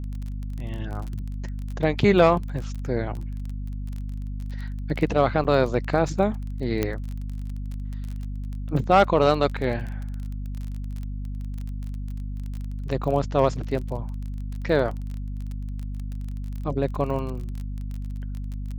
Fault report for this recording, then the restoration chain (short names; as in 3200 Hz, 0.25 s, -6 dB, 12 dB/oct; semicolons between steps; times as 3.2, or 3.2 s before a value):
crackle 24/s -31 dBFS
hum 50 Hz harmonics 5 -31 dBFS
5.44–5.45 gap 8.3 ms
6.83 pop -10 dBFS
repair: de-click; de-hum 50 Hz, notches 5; interpolate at 5.44, 8.3 ms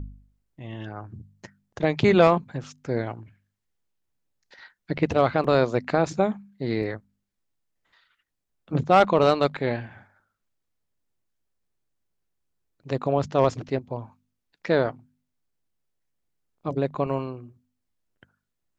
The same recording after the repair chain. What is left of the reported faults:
6.83 pop